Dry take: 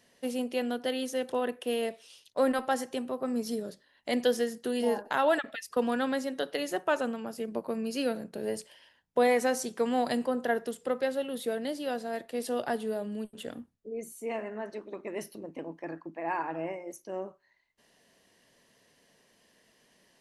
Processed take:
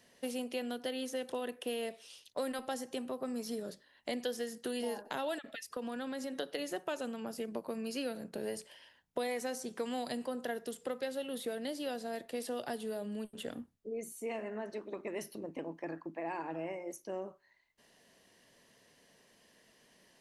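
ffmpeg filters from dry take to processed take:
-filter_complex "[0:a]asettb=1/sr,asplit=3[a][b][c];[a]atrim=end=5.384[d];[b]atrim=start=5.38:end=6.36,asetpts=PTS-STARTPTS,afade=t=in:d=0.004:c=qsin,afade=t=out:st=0.976:d=0.004:c=qsin,acompressor=threshold=-35dB:ratio=3:attack=3.2:release=140:knee=1:detection=peak[e];[c]atrim=start=6.356[f];[d][e]acrossfade=d=0.004:c1=hsin:c2=qsin[g];[g][f]acrossfade=d=0.004:c1=qsin:c2=hsin,acrossover=split=660|2700[h][i][j];[h]acompressor=threshold=-38dB:ratio=4[k];[i]acompressor=threshold=-46dB:ratio=4[l];[j]acompressor=threshold=-45dB:ratio=4[m];[k][l][m]amix=inputs=3:normalize=0"

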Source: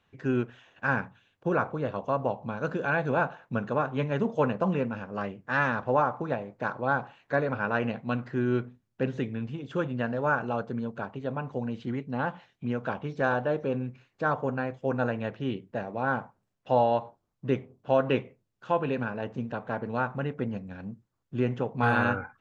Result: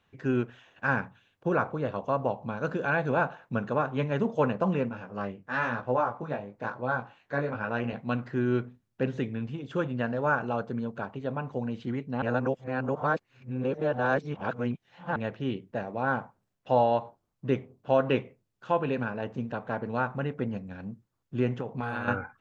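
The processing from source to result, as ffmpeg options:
-filter_complex "[0:a]asettb=1/sr,asplit=3[a][b][c];[a]atrim=end=4.894[d];[b]atrim=start=4.89:end=7.93,asetpts=PTS-STARTPTS,afade=t=in:d=0.004:c=qsin,afade=t=out:st=3.036:d=0.004:c=qsin,flanger=delay=16:depth=4.7:speed=1[e];[c]atrim=start=7.926[f];[d][e]acrossfade=d=0.004:c1=hsin:c2=qsin[g];[g][f]acrossfade=d=0.004:c1=qsin:c2=hsin,asettb=1/sr,asplit=3[h][i][j];[h]atrim=end=21.604[k];[i]atrim=start=21.6:end=22.08,asetpts=PTS-STARTPTS,afade=t=in:d=0.004:c=qsin,afade=t=out:st=0.476:d=0.004:c=qsin,acompressor=threshold=-28dB:ratio=6:attack=3.2:release=140:knee=1:detection=peak[l];[j]atrim=start=22.076[m];[k][l]acrossfade=d=0.004:c1=hsin:c2=qsin[n];[n][m]acrossfade=d=0.004:c1=qsin:c2=hsin,asplit=3[o][p][q];[o]atrim=end=12.222[r];[p]atrim=start=12.218:end=15.162,asetpts=PTS-STARTPTS,areverse[s];[q]atrim=start=15.158[t];[r][s]acrossfade=d=0.004:c1=hsin:c2=hsin[u];[u][t]acrossfade=d=0.004:c1=hsin:c2=hsin"

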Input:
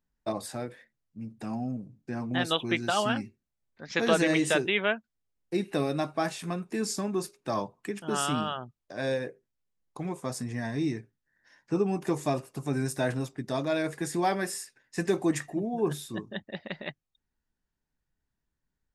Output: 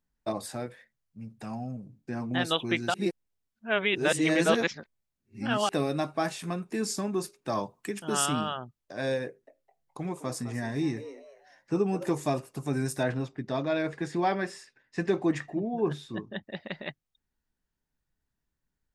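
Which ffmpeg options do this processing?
-filter_complex "[0:a]asettb=1/sr,asplit=3[a][b][c];[a]atrim=end=0.664[d];[b]atrim=start=0.66:end=1.84,asetpts=PTS-STARTPTS,afade=t=in:d=0.004:c=qsin,afade=t=out:st=1.176:d=0.004:c=qsin,equalizer=f=300:t=o:w=0.77:g=-8[e];[c]atrim=start=1.836[f];[d][e]acrossfade=d=0.004:c1=hsin:c2=qsin[g];[g][f]acrossfade=d=0.004:c1=qsin:c2=hsin,asettb=1/sr,asplit=3[h][i][j];[h]atrim=end=7.634[k];[i]atrim=start=7.63:end=8.26,asetpts=PTS-STARTPTS,afade=t=in:d=0.004:c=qsin,afade=t=out:st=0.626:d=0.004:c=qsin,highshelf=f=3.9k:g=6.5[l];[j]atrim=start=8.256[m];[k][l]acrossfade=d=0.004:c1=hsin:c2=qsin[n];[n][m]acrossfade=d=0.004:c1=qsin:c2=hsin,asettb=1/sr,asplit=3[o][p][q];[o]atrim=end=9.264[r];[p]atrim=start=9.26:end=12.12,asetpts=PTS-STARTPTS,afade=t=in:d=0.004:c=qsin,afade=t=out:st=2.856:d=0.004:c=qsin,asplit=4[s][t][u][v];[t]adelay=210,afreqshift=140,volume=-14dB[w];[u]adelay=420,afreqshift=280,volume=-24.2dB[x];[v]adelay=630,afreqshift=420,volume=-34.3dB[y];[s][w][x][y]amix=inputs=4:normalize=0,atrim=end_sample=126126[z];[q]atrim=start=12.116[aa];[r][z]acrossfade=d=0.004:c1=hsin:c2=qsin[ab];[ab][aa]acrossfade=d=0.004:c1=qsin:c2=hsin,asettb=1/sr,asplit=3[ac][ad][ae];[ac]atrim=end=13.034[af];[ad]atrim=start=13.03:end=16.43,asetpts=PTS-STARTPTS,afade=t=in:d=0.004:c=qsin,afade=t=out:st=3.396:d=0.004:c=qsin,lowpass=4.1k[ag];[ae]atrim=start=16.426[ah];[af][ag]acrossfade=d=0.004:c1=hsin:c2=qsin[ai];[ai][ah]acrossfade=d=0.004:c1=qsin:c2=hsin,asplit=3[aj][ak][al];[aj]atrim=end=2.942[am];[ak]atrim=start=2.938:end=5.692,asetpts=PTS-STARTPTS,areverse[an];[al]atrim=start=5.688[ao];[am][an]acrossfade=d=0.004:c1=hsin:c2=hsin[ap];[ap][ao]acrossfade=d=0.004:c1=hsin:c2=hsin"

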